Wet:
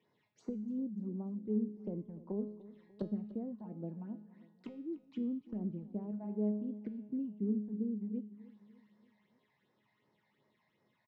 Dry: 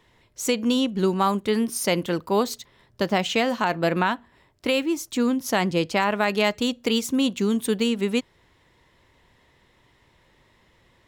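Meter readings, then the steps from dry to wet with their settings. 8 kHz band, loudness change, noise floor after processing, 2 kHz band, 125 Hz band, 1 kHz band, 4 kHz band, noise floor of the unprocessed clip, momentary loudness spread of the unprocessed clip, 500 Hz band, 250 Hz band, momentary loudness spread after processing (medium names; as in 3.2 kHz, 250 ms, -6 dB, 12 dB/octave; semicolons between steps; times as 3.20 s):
under -40 dB, -16.0 dB, -78 dBFS, under -40 dB, -12.5 dB, -34.5 dB, under -40 dB, -62 dBFS, 4 LU, -20.5 dB, -12.5 dB, 13 LU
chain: block-companded coder 5-bit; high-pass 140 Hz 24 dB/octave; low-pass that closes with the level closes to 320 Hz, closed at -22.5 dBFS; dynamic bell 1.3 kHz, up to -6 dB, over -50 dBFS, Q 1.2; phase shifter stages 8, 2.7 Hz, lowest notch 370–3200 Hz; distance through air 170 m; feedback comb 210 Hz, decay 0.7 s, harmonics all, mix 80%; feedback delay 296 ms, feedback 49%, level -18 dB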